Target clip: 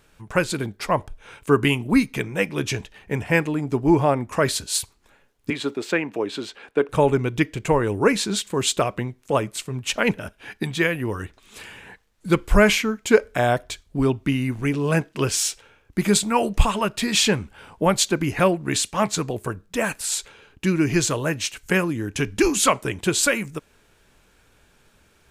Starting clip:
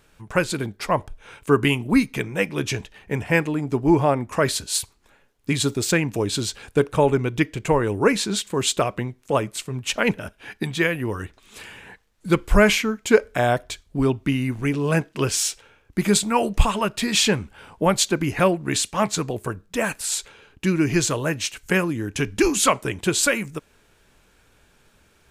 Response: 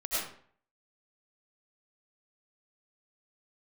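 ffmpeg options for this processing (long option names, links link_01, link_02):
-filter_complex "[0:a]asettb=1/sr,asplit=3[link_01][link_02][link_03];[link_01]atrim=end=5.504[link_04];[link_02]atrim=start=5.5:end=6.89,asetpts=PTS-STARTPTS,afade=type=in:duration=0.004:curve=qsin,afade=type=out:start_time=1.386:duration=0.004:curve=qsin,acrossover=split=230 3400:gain=0.0708 1 0.141[link_05][link_06][link_07];[link_05][link_06][link_07]amix=inputs=3:normalize=0[link_08];[link_03]atrim=start=6.886[link_09];[link_04][link_08]acrossfade=duration=0.004:curve1=hsin:curve2=qsin[link_10];[link_10][link_09]acrossfade=duration=0.004:curve1=qsin:curve2=hsin"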